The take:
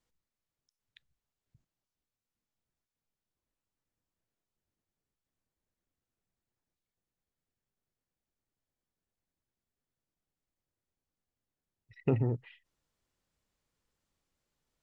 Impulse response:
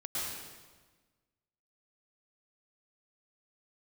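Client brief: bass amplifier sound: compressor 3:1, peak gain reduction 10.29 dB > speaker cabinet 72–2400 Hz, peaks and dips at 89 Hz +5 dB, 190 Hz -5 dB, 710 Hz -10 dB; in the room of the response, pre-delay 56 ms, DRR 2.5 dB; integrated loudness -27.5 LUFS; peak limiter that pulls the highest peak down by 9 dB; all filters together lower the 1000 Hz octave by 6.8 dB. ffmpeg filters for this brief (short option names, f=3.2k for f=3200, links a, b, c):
-filter_complex "[0:a]equalizer=f=1k:t=o:g=-4,alimiter=level_in=1.5dB:limit=-24dB:level=0:latency=1,volume=-1.5dB,asplit=2[a][b];[1:a]atrim=start_sample=2205,adelay=56[c];[b][c]afir=irnorm=-1:irlink=0,volume=-6.5dB[d];[a][d]amix=inputs=2:normalize=0,acompressor=threshold=-40dB:ratio=3,highpass=f=72:w=0.5412,highpass=f=72:w=1.3066,equalizer=f=89:t=q:w=4:g=5,equalizer=f=190:t=q:w=4:g=-5,equalizer=f=710:t=q:w=4:g=-10,lowpass=f=2.4k:w=0.5412,lowpass=f=2.4k:w=1.3066,volume=17.5dB"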